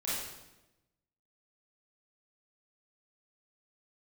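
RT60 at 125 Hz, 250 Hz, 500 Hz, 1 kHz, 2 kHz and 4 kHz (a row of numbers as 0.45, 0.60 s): 1.3, 1.2, 1.1, 0.90, 0.90, 0.85 s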